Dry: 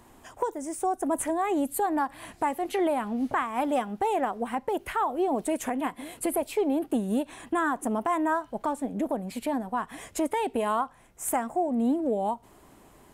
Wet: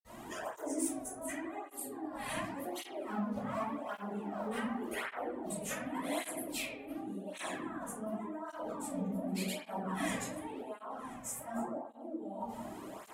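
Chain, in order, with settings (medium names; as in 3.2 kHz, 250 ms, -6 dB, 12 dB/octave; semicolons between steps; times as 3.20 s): 2.48–4.62 s: companding laws mixed up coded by A; compressor with a negative ratio -39 dBFS, ratio -1; reverberation RT60 1.3 s, pre-delay 48 ms; cancelling through-zero flanger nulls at 0.88 Hz, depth 3.2 ms; trim +8 dB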